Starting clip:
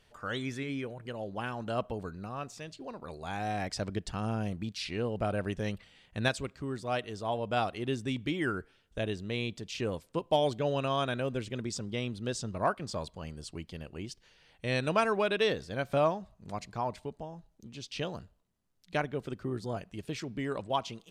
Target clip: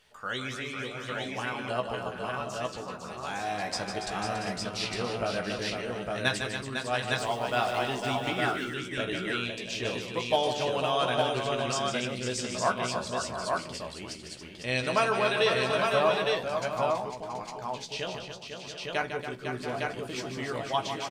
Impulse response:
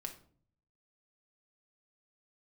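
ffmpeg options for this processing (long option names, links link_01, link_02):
-filter_complex "[0:a]asettb=1/sr,asplit=3[link_01][link_02][link_03];[link_01]atrim=end=7.184[link_04];[link_02]atrim=start=7.18:end=7.88,asetpts=PTS-STARTPTS,afade=type=in:duration=0.004:curve=qsin,afade=type=out:start_time=0.696:duration=0.004:curve=qsin,aeval=exprs='val(0)+0.5*0.00562*sgn(val(0))':channel_layout=same[link_05];[link_03]atrim=start=7.876[link_06];[link_04][link_05]acrossfade=duration=0.004:curve1=hsin:curve2=qsin[link_07];[link_07][link_06]acrossfade=duration=0.004:curve1=qsin:curve2=hsin,lowshelf=frequency=480:gain=-10.5,asplit=2[link_08][link_09];[link_09]adelay=16,volume=-6.5dB[link_10];[link_08][link_10]amix=inputs=2:normalize=0,aecho=1:1:152|282|502|681|734|858:0.398|0.335|0.447|0.251|0.211|0.708,asplit=2[link_11][link_12];[1:a]atrim=start_sample=2205[link_13];[link_12][link_13]afir=irnorm=-1:irlink=0,volume=-2.5dB[link_14];[link_11][link_14]amix=inputs=2:normalize=0"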